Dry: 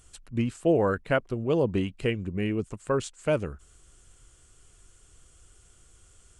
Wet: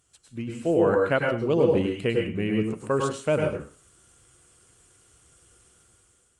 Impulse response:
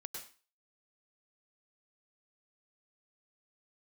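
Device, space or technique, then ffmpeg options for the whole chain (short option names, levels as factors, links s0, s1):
far-field microphone of a smart speaker: -filter_complex "[1:a]atrim=start_sample=2205[s0];[0:a][s0]afir=irnorm=-1:irlink=0,highpass=100,dynaudnorm=f=270:g=5:m=3.16,volume=0.708" -ar 48000 -c:a libopus -b:a 48k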